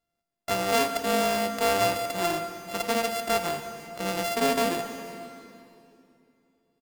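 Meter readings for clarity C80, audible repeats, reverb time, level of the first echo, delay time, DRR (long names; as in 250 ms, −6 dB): 8.5 dB, 1, 2.7 s, −22.5 dB, 500 ms, 7.0 dB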